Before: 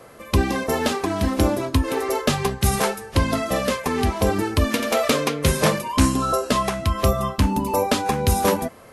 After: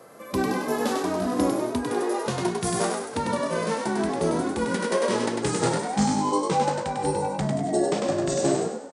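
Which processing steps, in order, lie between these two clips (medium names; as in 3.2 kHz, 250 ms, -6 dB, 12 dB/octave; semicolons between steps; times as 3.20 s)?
pitch bend over the whole clip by -6.5 st starting unshifted; high-pass 170 Hz 12 dB/octave; peaking EQ 2.6 kHz -6.5 dB 1.1 oct; on a send: frequency-shifting echo 99 ms, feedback 42%, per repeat +50 Hz, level -5 dB; on the sum: harmonic-percussive split percussive -7 dB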